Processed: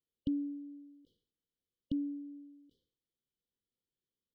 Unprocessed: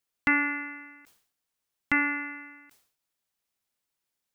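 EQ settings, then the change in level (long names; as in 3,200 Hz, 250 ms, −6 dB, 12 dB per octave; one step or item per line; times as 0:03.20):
dynamic equaliser 510 Hz, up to −5 dB, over −42 dBFS, Q 0.81
linear-phase brick-wall band-stop 550–2,900 Hz
high-frequency loss of the air 370 metres
0.0 dB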